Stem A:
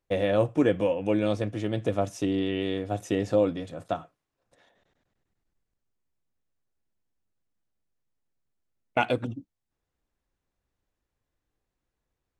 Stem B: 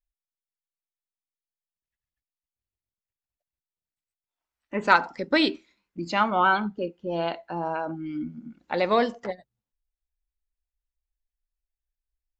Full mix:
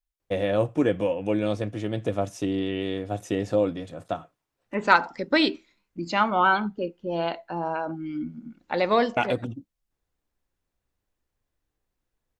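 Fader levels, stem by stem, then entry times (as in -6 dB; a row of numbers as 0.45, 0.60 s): 0.0, +0.5 dB; 0.20, 0.00 s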